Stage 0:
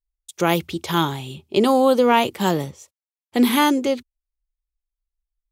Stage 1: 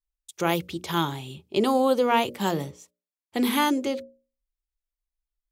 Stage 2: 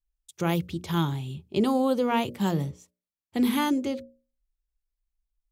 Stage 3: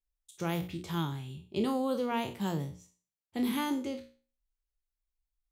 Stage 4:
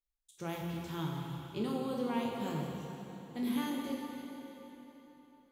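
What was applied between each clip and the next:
hum notches 60/120/180/240/300/360/420/480/540/600 Hz; trim -5 dB
tone controls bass +12 dB, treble 0 dB; trim -5 dB
spectral sustain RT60 0.38 s; trim -7.5 dB
plate-style reverb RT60 3.8 s, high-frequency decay 0.85×, DRR -0.5 dB; trim -7 dB

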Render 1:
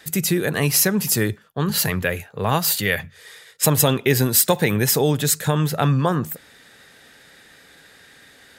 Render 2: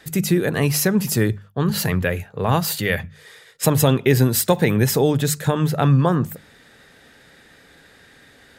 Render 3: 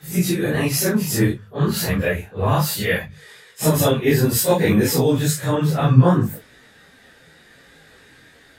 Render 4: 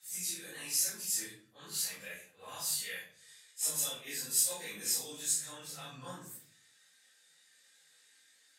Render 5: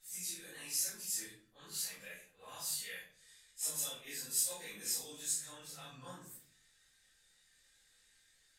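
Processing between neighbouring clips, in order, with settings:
tilt EQ -1.5 dB/octave; hum notches 50/100/150/200 Hz
phase randomisation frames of 100 ms; detune thickener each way 22 cents; trim +4 dB
band-pass filter 7.9 kHz, Q 1.5; simulated room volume 520 m³, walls furnished, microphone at 2.1 m; trim -5.5 dB
added noise brown -77 dBFS; trim -4.5 dB

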